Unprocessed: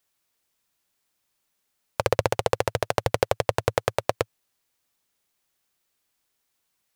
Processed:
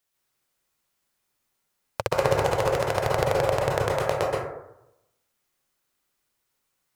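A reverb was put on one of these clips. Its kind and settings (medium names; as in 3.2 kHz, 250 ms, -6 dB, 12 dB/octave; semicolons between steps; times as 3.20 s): plate-style reverb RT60 0.87 s, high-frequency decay 0.35×, pre-delay 115 ms, DRR -3.5 dB; trim -4 dB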